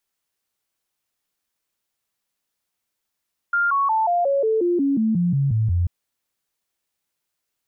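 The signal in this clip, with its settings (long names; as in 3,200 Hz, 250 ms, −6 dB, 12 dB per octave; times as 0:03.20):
stepped sweep 1,400 Hz down, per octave 3, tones 13, 0.18 s, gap 0.00 s −16.5 dBFS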